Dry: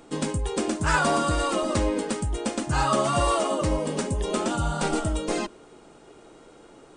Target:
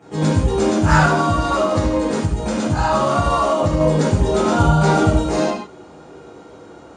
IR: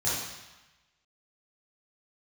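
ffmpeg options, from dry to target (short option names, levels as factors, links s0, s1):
-filter_complex "[1:a]atrim=start_sample=2205,afade=t=out:st=0.26:d=0.01,atrim=end_sample=11907[s0];[0:a][s0]afir=irnorm=-1:irlink=0,asettb=1/sr,asplit=3[s1][s2][s3];[s1]atrim=end=1.054[s4];[s2]atrim=start=1.05:end=3.81,asetpts=PTS-STARTPTS,afade=t=in:d=0.004:c=qsin,afade=t=out:st=2.756:d=0.004:c=qsin,acompressor=threshold=0.2:ratio=2.5[s5];[s3]atrim=start=3.806[s6];[s4][s5]acrossfade=d=0.004:c1=hsin:c2=qsin[s7];[s7][s6]acrossfade=d=0.004:c1=qsin:c2=hsin,lowpass=f=3100:p=1,equalizer=f=95:w=1:g=-4"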